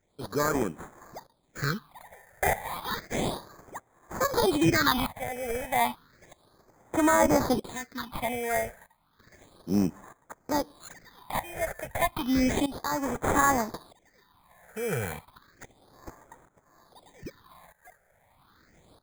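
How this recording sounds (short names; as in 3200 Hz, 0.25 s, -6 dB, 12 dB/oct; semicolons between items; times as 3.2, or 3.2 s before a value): aliases and images of a low sample rate 2800 Hz, jitter 0%; tremolo saw up 0.79 Hz, depth 85%; phasing stages 6, 0.32 Hz, lowest notch 280–4400 Hz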